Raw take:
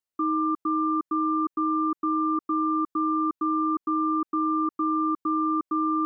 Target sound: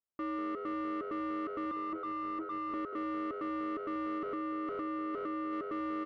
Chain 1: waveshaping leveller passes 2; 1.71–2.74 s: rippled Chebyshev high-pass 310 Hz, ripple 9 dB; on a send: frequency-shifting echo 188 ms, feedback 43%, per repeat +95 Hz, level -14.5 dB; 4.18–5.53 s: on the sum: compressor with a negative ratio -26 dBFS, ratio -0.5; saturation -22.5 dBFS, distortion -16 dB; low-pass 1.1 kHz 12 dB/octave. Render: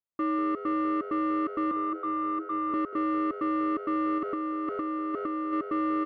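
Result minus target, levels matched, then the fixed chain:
saturation: distortion -9 dB
waveshaping leveller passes 2; 1.71–2.74 s: rippled Chebyshev high-pass 310 Hz, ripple 9 dB; on a send: frequency-shifting echo 188 ms, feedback 43%, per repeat +95 Hz, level -14.5 dB; 4.18–5.53 s: on the sum: compressor with a negative ratio -26 dBFS, ratio -0.5; saturation -33 dBFS, distortion -7 dB; low-pass 1.1 kHz 12 dB/octave

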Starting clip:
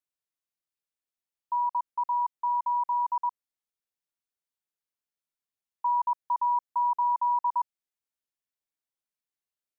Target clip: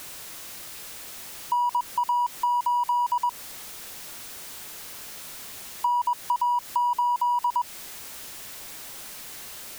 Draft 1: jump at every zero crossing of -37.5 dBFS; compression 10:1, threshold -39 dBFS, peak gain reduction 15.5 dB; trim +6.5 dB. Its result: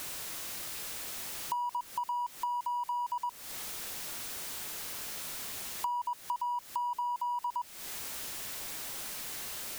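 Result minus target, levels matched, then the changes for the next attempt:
compression: peak gain reduction +10 dB
change: compression 10:1, threshold -28 dBFS, peak gain reduction 5.5 dB

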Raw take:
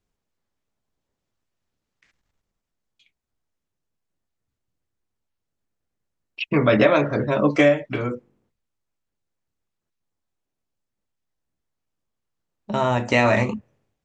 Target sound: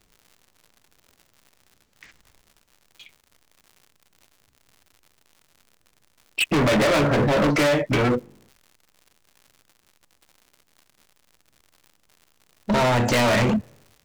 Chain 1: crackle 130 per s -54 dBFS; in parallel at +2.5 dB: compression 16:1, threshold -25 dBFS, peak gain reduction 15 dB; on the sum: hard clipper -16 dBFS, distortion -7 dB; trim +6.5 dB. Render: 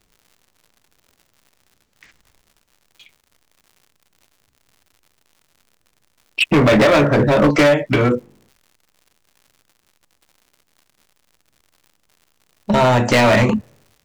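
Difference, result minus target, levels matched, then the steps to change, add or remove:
hard clipper: distortion -4 dB
change: hard clipper -24 dBFS, distortion -3 dB

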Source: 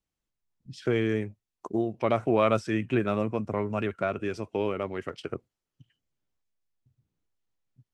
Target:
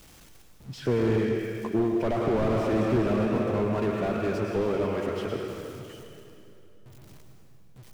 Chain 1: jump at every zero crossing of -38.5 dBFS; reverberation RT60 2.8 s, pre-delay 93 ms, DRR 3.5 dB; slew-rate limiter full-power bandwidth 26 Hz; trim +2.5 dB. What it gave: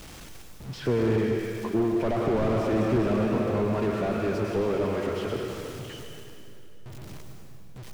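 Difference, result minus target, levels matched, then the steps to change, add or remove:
jump at every zero crossing: distortion +9 dB
change: jump at every zero crossing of -47.5 dBFS

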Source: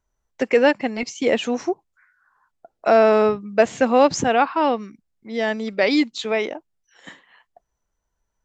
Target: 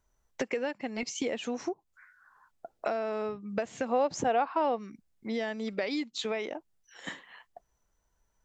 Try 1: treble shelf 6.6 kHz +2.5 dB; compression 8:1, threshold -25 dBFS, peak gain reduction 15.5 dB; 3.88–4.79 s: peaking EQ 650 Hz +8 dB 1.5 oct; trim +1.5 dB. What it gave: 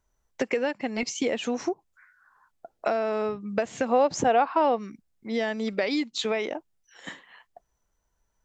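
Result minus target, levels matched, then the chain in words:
compression: peak gain reduction -5.5 dB
treble shelf 6.6 kHz +2.5 dB; compression 8:1, threshold -31.5 dBFS, peak gain reduction 21.5 dB; 3.88–4.79 s: peaking EQ 650 Hz +8 dB 1.5 oct; trim +1.5 dB

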